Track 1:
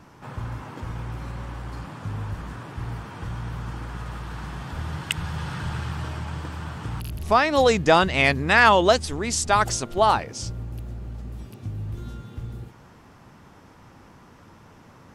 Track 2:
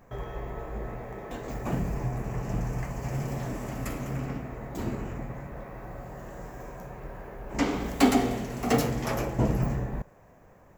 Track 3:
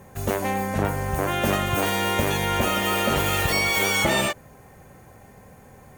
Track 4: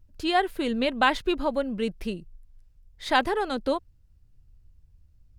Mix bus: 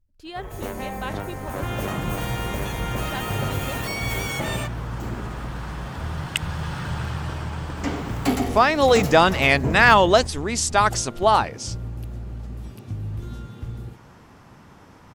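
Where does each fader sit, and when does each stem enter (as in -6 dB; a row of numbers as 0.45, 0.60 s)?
+1.5, -1.5, -7.5, -12.0 dB; 1.25, 0.25, 0.35, 0.00 s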